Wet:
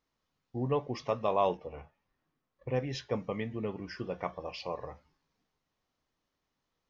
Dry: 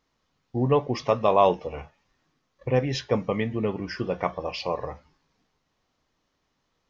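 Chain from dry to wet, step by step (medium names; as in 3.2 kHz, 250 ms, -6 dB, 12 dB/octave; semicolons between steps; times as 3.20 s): 1.57–2.69 s: low-pass 2.1 kHz 6 dB/octave; trim -9 dB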